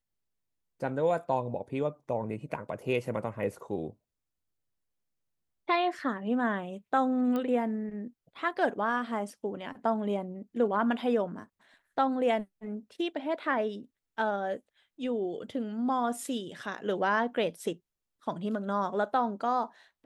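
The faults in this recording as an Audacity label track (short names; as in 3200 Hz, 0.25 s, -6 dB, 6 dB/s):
7.360000	7.360000	pop -21 dBFS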